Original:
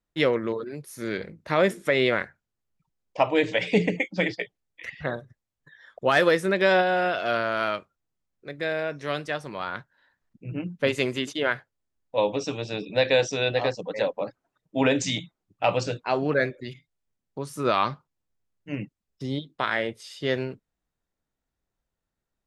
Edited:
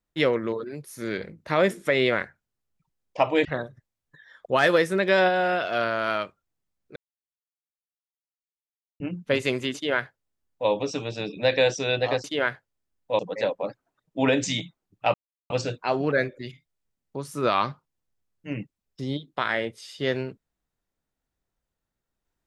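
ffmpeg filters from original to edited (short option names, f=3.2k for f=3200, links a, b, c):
-filter_complex "[0:a]asplit=7[a][b][c][d][e][f][g];[a]atrim=end=3.452[h];[b]atrim=start=4.978:end=8.49,asetpts=PTS-STARTPTS,afade=t=out:st=3.508:d=0.004:c=hsin[i];[c]atrim=start=8.49:end=10.53,asetpts=PTS-STARTPTS,volume=0[j];[d]atrim=start=10.53:end=13.772,asetpts=PTS-STARTPTS,afade=t=in:d=0.004:c=hsin[k];[e]atrim=start=11.278:end=12.232[l];[f]atrim=start=13.768:end=15.72,asetpts=PTS-STARTPTS,afade=t=out:st=1.948:d=0.004:c=hsin,apad=pad_dur=0.36[m];[g]atrim=start=15.72,asetpts=PTS-STARTPTS,afade=t=in:d=0.004:c=hsin[n];[i][j][k]concat=n=3:v=0:a=1[o];[h][o]acrossfade=d=0.004:c1=hsin:c2=hsin[p];[p][l]acrossfade=d=0.004:c1=hsin:c2=hsin[q];[m][n]concat=n=2:v=0:a=1[r];[q][r]acrossfade=d=0.004:c1=hsin:c2=hsin"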